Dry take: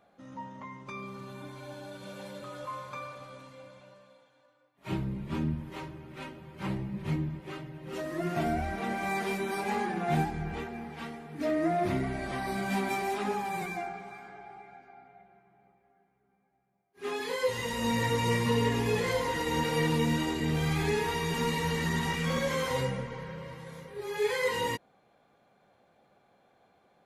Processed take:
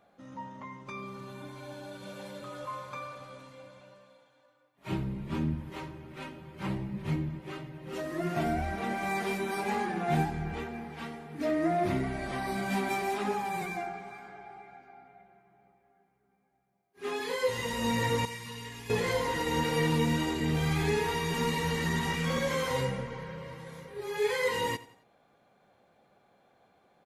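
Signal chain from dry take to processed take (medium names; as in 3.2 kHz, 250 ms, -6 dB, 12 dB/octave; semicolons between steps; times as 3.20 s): 18.25–18.90 s: amplifier tone stack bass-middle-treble 5-5-5; feedback delay 89 ms, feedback 40%, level -18 dB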